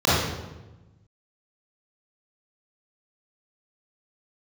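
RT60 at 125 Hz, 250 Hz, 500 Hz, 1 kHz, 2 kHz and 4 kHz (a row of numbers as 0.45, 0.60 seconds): 1.7, 1.5, 1.2, 1.0, 0.90, 0.75 seconds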